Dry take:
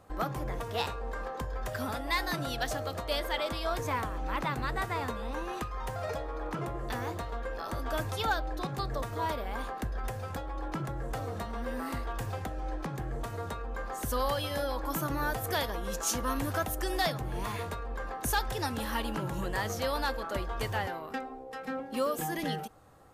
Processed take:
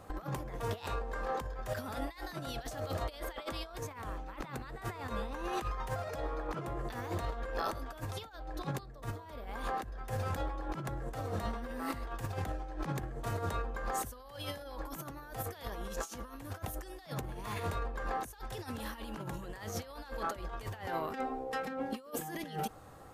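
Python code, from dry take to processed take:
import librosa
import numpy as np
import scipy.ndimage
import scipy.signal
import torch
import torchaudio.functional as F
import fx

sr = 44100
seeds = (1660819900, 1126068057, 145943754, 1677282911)

y = fx.low_shelf(x, sr, hz=350.0, db=4.0, at=(8.79, 9.48))
y = fx.over_compress(y, sr, threshold_db=-38.0, ratio=-0.5)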